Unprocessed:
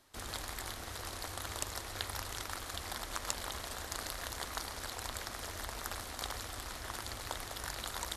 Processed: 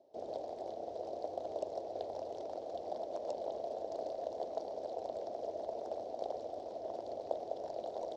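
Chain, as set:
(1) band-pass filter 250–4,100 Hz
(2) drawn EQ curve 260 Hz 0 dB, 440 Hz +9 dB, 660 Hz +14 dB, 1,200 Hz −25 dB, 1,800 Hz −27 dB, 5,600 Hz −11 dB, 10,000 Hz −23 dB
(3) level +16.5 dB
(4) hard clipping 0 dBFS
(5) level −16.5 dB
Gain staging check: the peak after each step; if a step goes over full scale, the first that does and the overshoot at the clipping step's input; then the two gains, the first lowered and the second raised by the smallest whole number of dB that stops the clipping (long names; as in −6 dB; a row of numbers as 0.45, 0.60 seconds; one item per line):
−21.0, −19.5, −3.0, −3.0, −19.5 dBFS
no step passes full scale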